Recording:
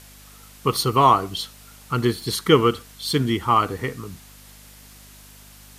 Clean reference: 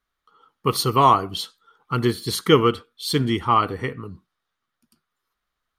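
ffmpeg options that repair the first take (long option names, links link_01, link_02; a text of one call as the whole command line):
ffmpeg -i in.wav -af "bandreject=frequency=50.5:width_type=h:width=4,bandreject=frequency=101:width_type=h:width=4,bandreject=frequency=151.5:width_type=h:width=4,bandreject=frequency=202:width_type=h:width=4,bandreject=frequency=252.5:width_type=h:width=4,afwtdn=0.0045" out.wav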